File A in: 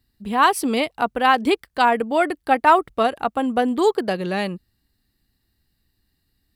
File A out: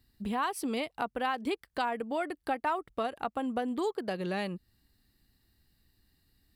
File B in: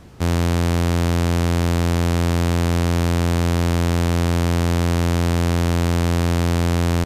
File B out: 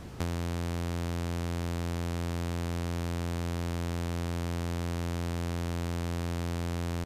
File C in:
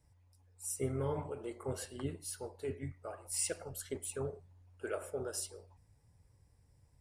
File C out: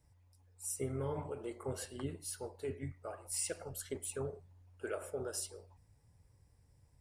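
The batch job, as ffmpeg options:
-af "acompressor=threshold=-34dB:ratio=3"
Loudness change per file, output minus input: −13.5, −14.5, −1.0 LU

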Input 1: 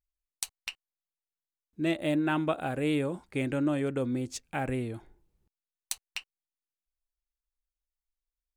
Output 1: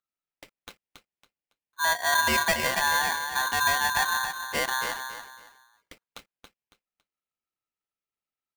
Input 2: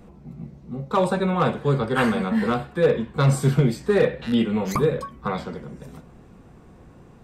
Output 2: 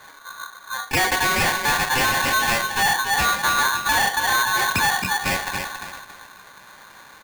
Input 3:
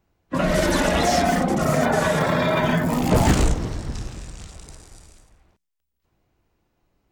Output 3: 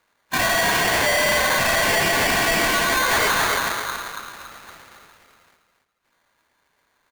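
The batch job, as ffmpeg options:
-af "highpass=frequency=280:poles=1,aecho=1:1:278|556|834:0.398|0.107|0.029,aresample=11025,asoftclip=type=hard:threshold=-23dB,aresample=44100,lowpass=frequency=1700:width=0.5412,lowpass=frequency=1700:width=1.3066,aeval=exprs='val(0)*sgn(sin(2*PI*1300*n/s))':channel_layout=same,volume=6.5dB"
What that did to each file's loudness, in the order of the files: +7.0, +3.0, +2.0 LU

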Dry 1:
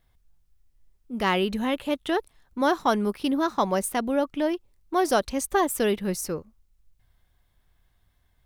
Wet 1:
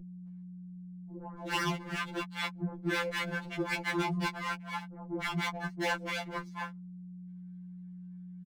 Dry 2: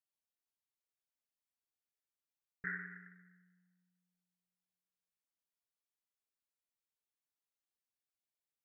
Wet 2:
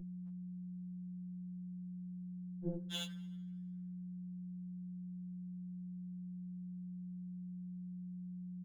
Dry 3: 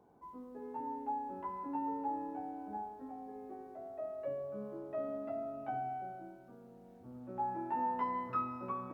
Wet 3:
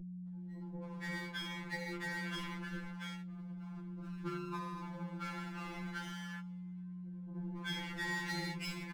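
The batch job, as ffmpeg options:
-filter_complex "[0:a]afwtdn=0.0141,lowpass=frequency=1900:width=0.5412,lowpass=frequency=1900:width=1.3066,equalizer=frequency=290:width_type=o:width=2.7:gain=-10,aeval=exprs='clip(val(0),-1,0.0501)':channel_layout=same,lowshelf=frequency=420:gain=-11,areverse,acompressor=threshold=-39dB:ratio=5,areverse,aeval=exprs='abs(val(0))':channel_layout=same,aecho=1:1:4.2:0.6,aeval=exprs='val(0)*sin(2*PI*100*n/s)':channel_layout=same,aeval=exprs='val(0)+0.00158*(sin(2*PI*60*n/s)+sin(2*PI*2*60*n/s)/2+sin(2*PI*3*60*n/s)/3+sin(2*PI*4*60*n/s)/4+sin(2*PI*5*60*n/s)/5)':channel_layout=same,acrossover=split=660[link_01][link_02];[link_02]adelay=280[link_03];[link_01][link_03]amix=inputs=2:normalize=0,afftfilt=real='re*2.83*eq(mod(b,8),0)':imag='im*2.83*eq(mod(b,8),0)':win_size=2048:overlap=0.75,volume=17.5dB"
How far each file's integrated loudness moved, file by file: −9.0, −1.5, −2.0 LU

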